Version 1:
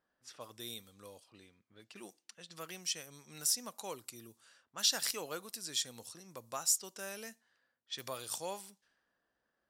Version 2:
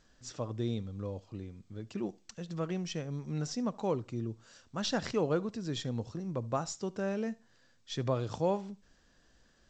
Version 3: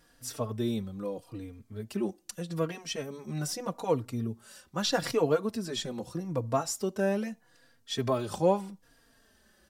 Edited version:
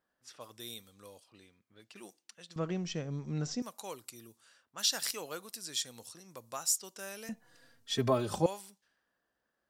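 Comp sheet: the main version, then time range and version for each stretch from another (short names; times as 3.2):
1
2.56–3.62 from 2
7.29–8.46 from 3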